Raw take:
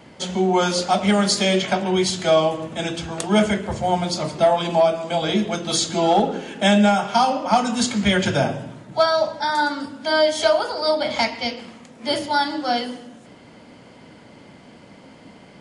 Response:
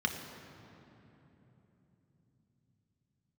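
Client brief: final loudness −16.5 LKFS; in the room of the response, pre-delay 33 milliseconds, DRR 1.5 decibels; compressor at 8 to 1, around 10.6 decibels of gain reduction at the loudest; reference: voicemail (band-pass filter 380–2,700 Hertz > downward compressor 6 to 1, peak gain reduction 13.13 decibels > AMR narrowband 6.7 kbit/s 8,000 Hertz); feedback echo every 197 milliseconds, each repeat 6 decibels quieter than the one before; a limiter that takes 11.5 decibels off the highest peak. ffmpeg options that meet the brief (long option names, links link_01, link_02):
-filter_complex "[0:a]acompressor=threshold=-23dB:ratio=8,alimiter=limit=-20dB:level=0:latency=1,aecho=1:1:197|394|591|788|985|1182:0.501|0.251|0.125|0.0626|0.0313|0.0157,asplit=2[link_01][link_02];[1:a]atrim=start_sample=2205,adelay=33[link_03];[link_02][link_03]afir=irnorm=-1:irlink=0,volume=-8dB[link_04];[link_01][link_04]amix=inputs=2:normalize=0,highpass=380,lowpass=2700,acompressor=threshold=-34dB:ratio=6,volume=23dB" -ar 8000 -c:a libopencore_amrnb -b:a 6700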